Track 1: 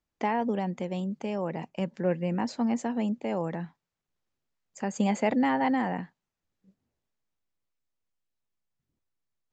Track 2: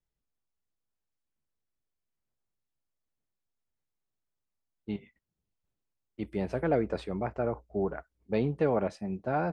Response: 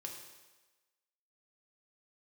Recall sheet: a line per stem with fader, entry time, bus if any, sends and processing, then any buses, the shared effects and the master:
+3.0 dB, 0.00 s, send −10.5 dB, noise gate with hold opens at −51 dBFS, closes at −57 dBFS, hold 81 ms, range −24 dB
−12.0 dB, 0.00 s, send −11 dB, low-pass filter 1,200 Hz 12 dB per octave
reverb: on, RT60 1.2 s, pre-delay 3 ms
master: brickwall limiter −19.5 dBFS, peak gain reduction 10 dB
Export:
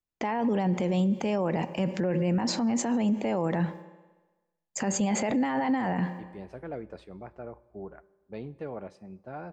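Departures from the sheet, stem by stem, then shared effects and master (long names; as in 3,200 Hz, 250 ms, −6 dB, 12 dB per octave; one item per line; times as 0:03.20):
stem 1 +3.0 dB → +13.0 dB
stem 2: missing low-pass filter 1,200 Hz 12 dB per octave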